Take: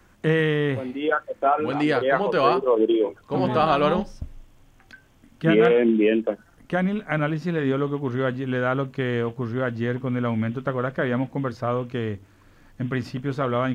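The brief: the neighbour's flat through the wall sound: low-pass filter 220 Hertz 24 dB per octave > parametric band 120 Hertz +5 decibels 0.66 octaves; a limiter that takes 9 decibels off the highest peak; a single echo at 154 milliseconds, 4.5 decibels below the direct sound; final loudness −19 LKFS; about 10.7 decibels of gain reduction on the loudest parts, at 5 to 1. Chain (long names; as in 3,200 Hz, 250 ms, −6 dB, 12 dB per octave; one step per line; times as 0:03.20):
downward compressor 5 to 1, threshold −26 dBFS
brickwall limiter −22.5 dBFS
low-pass filter 220 Hz 24 dB per octave
parametric band 120 Hz +5 dB 0.66 octaves
single-tap delay 154 ms −4.5 dB
level +14.5 dB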